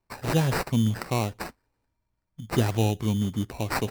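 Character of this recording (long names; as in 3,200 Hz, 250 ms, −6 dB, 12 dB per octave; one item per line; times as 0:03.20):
aliases and images of a low sample rate 3,300 Hz, jitter 0%
MP3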